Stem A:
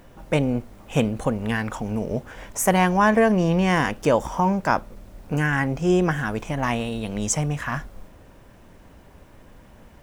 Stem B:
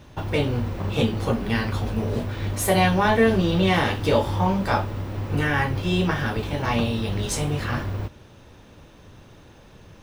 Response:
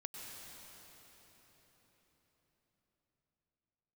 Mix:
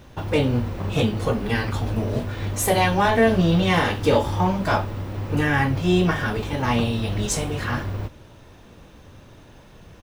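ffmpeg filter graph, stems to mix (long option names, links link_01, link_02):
-filter_complex "[0:a]asoftclip=type=hard:threshold=-13dB,asplit=2[link_01][link_02];[link_02]adelay=2.2,afreqshift=0.8[link_03];[link_01][link_03]amix=inputs=2:normalize=1,volume=-1.5dB[link_04];[1:a]volume=0dB[link_05];[link_04][link_05]amix=inputs=2:normalize=0"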